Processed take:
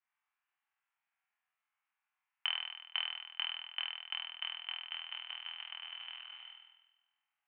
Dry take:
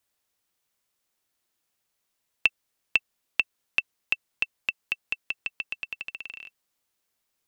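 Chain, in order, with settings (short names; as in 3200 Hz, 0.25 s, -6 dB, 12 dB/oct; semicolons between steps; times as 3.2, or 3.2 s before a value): flutter echo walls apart 4.2 m, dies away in 1.1 s; modulation noise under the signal 14 dB; mistuned SSB +390 Hz 350–2300 Hz; gain -7.5 dB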